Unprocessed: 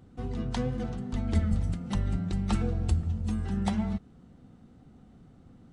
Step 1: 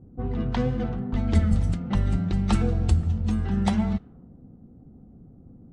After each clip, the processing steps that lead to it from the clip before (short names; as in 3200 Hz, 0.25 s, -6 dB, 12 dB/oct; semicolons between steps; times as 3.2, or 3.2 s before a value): low-pass opened by the level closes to 440 Hz, open at -23 dBFS; gain +5.5 dB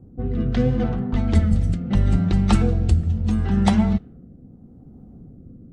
rotary speaker horn 0.75 Hz; gain +6 dB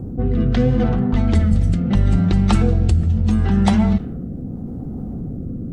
fast leveller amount 50%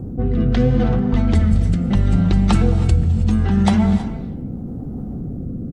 speakerphone echo 0.32 s, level -18 dB; non-linear reverb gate 0.35 s rising, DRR 12 dB